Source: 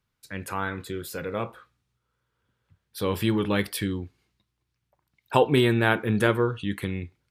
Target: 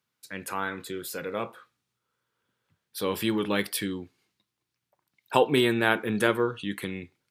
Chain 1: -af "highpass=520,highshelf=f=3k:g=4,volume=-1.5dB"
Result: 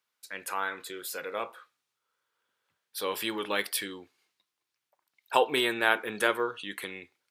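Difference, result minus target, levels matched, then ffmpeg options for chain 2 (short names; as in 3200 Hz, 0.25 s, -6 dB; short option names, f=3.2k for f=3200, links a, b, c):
250 Hz band -7.0 dB
-af "highpass=180,highshelf=f=3k:g=4,volume=-1.5dB"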